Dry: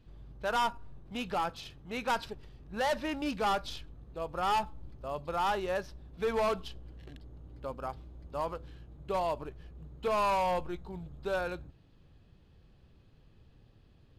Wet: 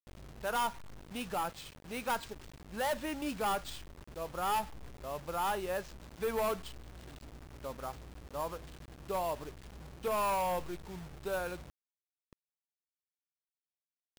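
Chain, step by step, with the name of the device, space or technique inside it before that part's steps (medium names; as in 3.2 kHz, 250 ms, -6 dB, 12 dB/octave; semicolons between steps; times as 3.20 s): early 8-bit sampler (sample-rate reducer 12 kHz, jitter 0%; bit crusher 8-bit); trim -3 dB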